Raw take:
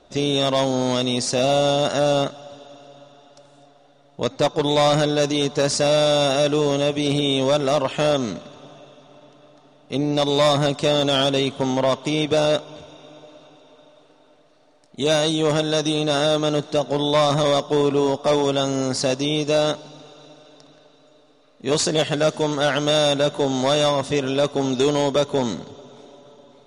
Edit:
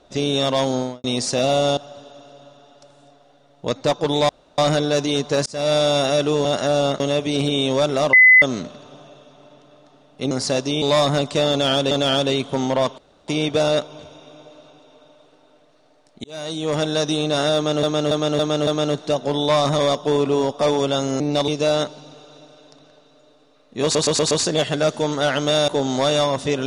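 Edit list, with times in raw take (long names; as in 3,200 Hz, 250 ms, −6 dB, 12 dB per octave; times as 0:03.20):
0:00.73–0:01.04: fade out and dull
0:01.77–0:02.32: move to 0:06.71
0:04.84: splice in room tone 0.29 s
0:05.72–0:05.99: fade in
0:07.84–0:08.13: beep over 2,020 Hz −6.5 dBFS
0:10.02–0:10.30: swap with 0:18.85–0:19.36
0:10.98–0:11.39: repeat, 2 plays
0:12.05: splice in room tone 0.30 s
0:15.01–0:15.65: fade in
0:16.32–0:16.60: repeat, 5 plays
0:21.71: stutter 0.12 s, 5 plays
0:23.08–0:23.33: remove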